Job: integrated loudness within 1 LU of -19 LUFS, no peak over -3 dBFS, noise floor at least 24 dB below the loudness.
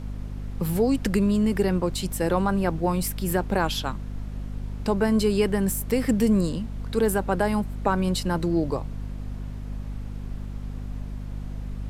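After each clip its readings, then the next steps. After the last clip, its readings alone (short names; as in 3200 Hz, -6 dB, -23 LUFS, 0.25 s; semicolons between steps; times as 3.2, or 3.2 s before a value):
hum 50 Hz; harmonics up to 250 Hz; hum level -31 dBFS; noise floor -35 dBFS; noise floor target -50 dBFS; loudness -25.5 LUFS; peak -8.0 dBFS; loudness target -19.0 LUFS
-> de-hum 50 Hz, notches 5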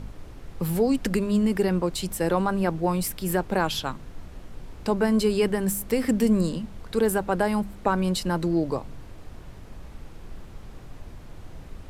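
hum none; noise floor -43 dBFS; noise floor target -49 dBFS
-> noise print and reduce 6 dB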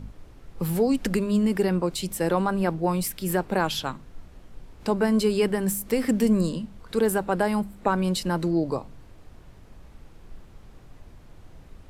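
noise floor -49 dBFS; loudness -25.0 LUFS; peak -8.0 dBFS; loudness target -19.0 LUFS
-> gain +6 dB; limiter -3 dBFS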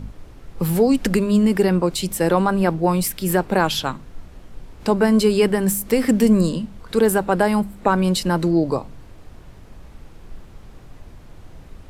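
loudness -19.0 LUFS; peak -3.0 dBFS; noise floor -43 dBFS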